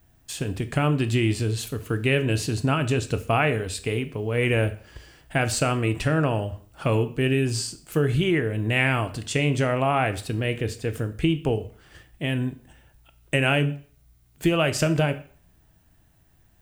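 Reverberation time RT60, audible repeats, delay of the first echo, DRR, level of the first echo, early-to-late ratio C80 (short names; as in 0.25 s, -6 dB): 0.45 s, none, none, 10.0 dB, none, 20.0 dB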